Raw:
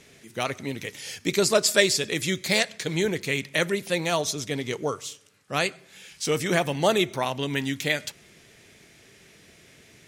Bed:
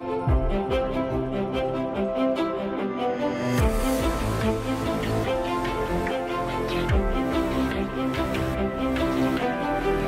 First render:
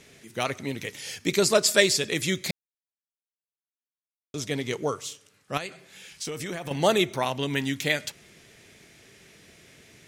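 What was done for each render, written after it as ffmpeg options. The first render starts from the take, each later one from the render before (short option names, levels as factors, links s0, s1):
-filter_complex "[0:a]asettb=1/sr,asplit=3[s0][s1][s2];[s0]atrim=end=5.574[s3];[s1]atrim=start=5.57:end=6.71,asetpts=PTS-STARTPTS,afade=t=in:d=0.004:c=qsin,afade=t=out:st=1.136:d=0.004:c=qsin,acompressor=threshold=0.0355:ratio=12:attack=3.2:release=140:knee=1:detection=peak[s4];[s2]atrim=start=6.706[s5];[s3][s4]acrossfade=d=0.004:c1=hsin:c2=qsin[s6];[s6][s5]acrossfade=d=0.004:c1=qsin:c2=hsin,asplit=3[s7][s8][s9];[s7]atrim=end=2.51,asetpts=PTS-STARTPTS,afade=t=out:st=2.506:d=0.004:c=hsin[s10];[s8]atrim=start=2.51:end=4.34,asetpts=PTS-STARTPTS,volume=0[s11];[s9]atrim=start=4.34,asetpts=PTS-STARTPTS,afade=t=in:d=0.004:c=hsin[s12];[s10][s11][s12]concat=n=3:v=0:a=1"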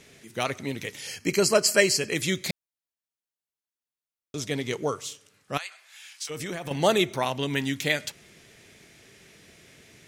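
-filter_complex "[0:a]asettb=1/sr,asplit=3[s0][s1][s2];[s0]atrim=end=1.074[s3];[s1]atrim=start=1.07:end=2.16,asetpts=PTS-STARTPTS,afade=t=in:d=0.004:c=qsin,afade=t=out:st=1.086:d=0.004:c=qsin,asuperstop=centerf=3600:order=20:qfactor=5.1[s4];[s2]atrim=start=2.156[s5];[s3][s4]acrossfade=d=0.004:c1=hsin:c2=qsin[s6];[s6][s5]acrossfade=d=0.004:c1=qsin:c2=hsin,asplit=3[s7][s8][s9];[s7]afade=t=out:st=5.57:d=0.02[s10];[s8]highpass=f=870:w=0.5412,highpass=f=870:w=1.3066,afade=t=in:st=5.57:d=0.02,afade=t=out:st=6.29:d=0.02[s11];[s9]afade=t=in:st=6.29:d=0.02[s12];[s10][s11][s12]amix=inputs=3:normalize=0"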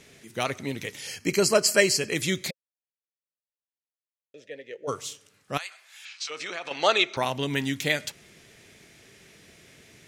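-filter_complex "[0:a]asplit=3[s0][s1][s2];[s0]afade=t=out:st=2.49:d=0.02[s3];[s1]asplit=3[s4][s5][s6];[s4]bandpass=f=530:t=q:w=8,volume=1[s7];[s5]bandpass=f=1840:t=q:w=8,volume=0.501[s8];[s6]bandpass=f=2480:t=q:w=8,volume=0.355[s9];[s7][s8][s9]amix=inputs=3:normalize=0,afade=t=in:st=2.49:d=0.02,afade=t=out:st=4.87:d=0.02[s10];[s2]afade=t=in:st=4.87:d=0.02[s11];[s3][s10][s11]amix=inputs=3:normalize=0,asettb=1/sr,asplit=3[s12][s13][s14];[s12]atrim=end=6.054[s15];[s13]atrim=start=6.05:end=7.17,asetpts=PTS-STARTPTS,afade=t=in:d=0.004:c=qsin,afade=t=out:st=1.116:d=0.004:c=qsin,highpass=490,equalizer=f=1300:t=q:w=4:g=7,equalizer=f=2500:t=q:w=4:g=7,equalizer=f=4100:t=q:w=4:g=7,lowpass=f=6700:w=0.5412,lowpass=f=6700:w=1.3066[s16];[s14]atrim=start=7.166[s17];[s15][s16]acrossfade=d=0.004:c1=hsin:c2=qsin[s18];[s18][s17]acrossfade=d=0.004:c1=qsin:c2=hsin"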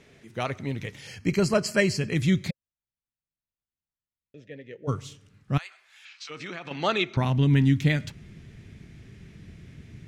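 -af "lowpass=f=2000:p=1,asubboost=boost=9:cutoff=180"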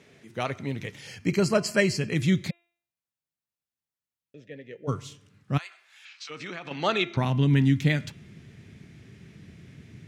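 -af "highpass=100,bandreject=f=343:t=h:w=4,bandreject=f=686:t=h:w=4,bandreject=f=1029:t=h:w=4,bandreject=f=1372:t=h:w=4,bandreject=f=1715:t=h:w=4,bandreject=f=2058:t=h:w=4,bandreject=f=2401:t=h:w=4,bandreject=f=2744:t=h:w=4,bandreject=f=3087:t=h:w=4,bandreject=f=3430:t=h:w=4,bandreject=f=3773:t=h:w=4"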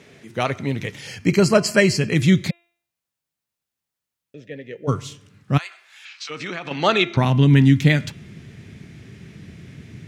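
-af "volume=2.37,alimiter=limit=0.794:level=0:latency=1"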